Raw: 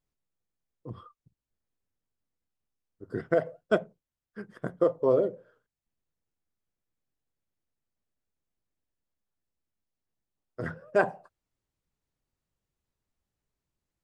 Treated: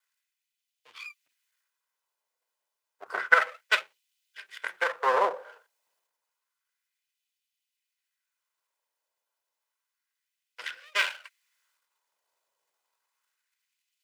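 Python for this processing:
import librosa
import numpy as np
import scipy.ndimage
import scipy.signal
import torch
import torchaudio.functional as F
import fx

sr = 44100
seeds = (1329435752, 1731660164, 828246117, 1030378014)

y = fx.lower_of_two(x, sr, delay_ms=2.0)
y = fx.transient(y, sr, attack_db=4, sustain_db=8)
y = fx.filter_lfo_highpass(y, sr, shape='sine', hz=0.3, low_hz=710.0, high_hz=2800.0, q=1.9)
y = y * librosa.db_to_amplitude(7.5)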